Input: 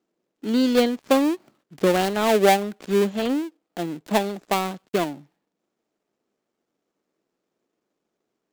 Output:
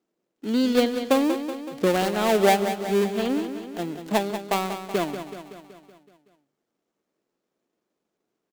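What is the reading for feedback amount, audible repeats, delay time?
58%, 6, 188 ms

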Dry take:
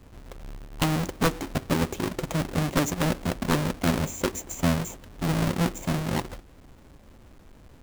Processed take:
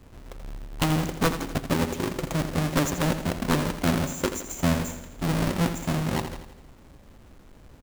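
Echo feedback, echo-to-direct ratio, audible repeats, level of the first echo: 53%, −8.5 dB, 5, −10.0 dB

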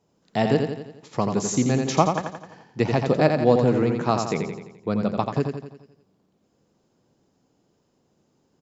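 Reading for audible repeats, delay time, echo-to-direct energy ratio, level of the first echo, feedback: 6, 86 ms, −4.0 dB, −5.5 dB, 52%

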